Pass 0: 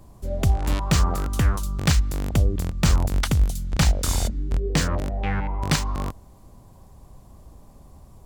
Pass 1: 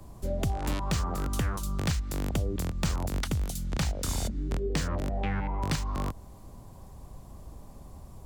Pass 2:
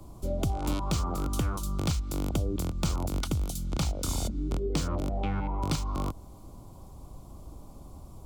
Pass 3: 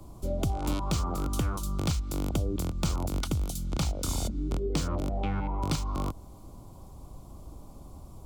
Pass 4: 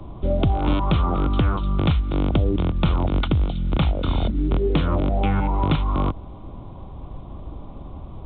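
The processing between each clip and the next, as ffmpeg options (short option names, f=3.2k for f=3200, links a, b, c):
-filter_complex "[0:a]acrossover=split=120|300[a][b][c];[a]acompressor=threshold=-32dB:ratio=4[d];[b]acompressor=threshold=-36dB:ratio=4[e];[c]acompressor=threshold=-35dB:ratio=4[f];[d][e][f]amix=inputs=3:normalize=0,volume=1dB"
-af "superequalizer=6b=1.58:11b=0.282:12b=0.708"
-af anull
-filter_complex "[0:a]asplit=2[a][b];[b]asoftclip=type=tanh:threshold=-23.5dB,volume=-7dB[c];[a][c]amix=inputs=2:normalize=0,volume=7dB" -ar 8000 -c:a pcm_alaw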